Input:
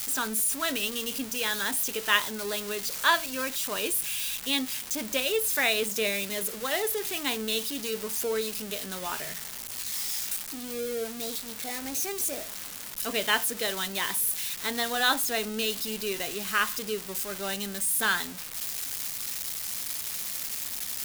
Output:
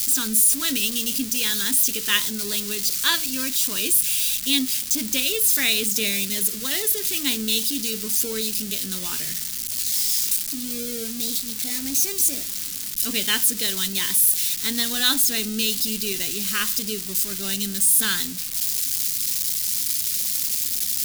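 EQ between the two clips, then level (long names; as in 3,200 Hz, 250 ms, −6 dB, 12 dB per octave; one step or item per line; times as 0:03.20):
drawn EQ curve 280 Hz 0 dB, 660 Hz −18 dB, 4,700 Hz +3 dB
+7.0 dB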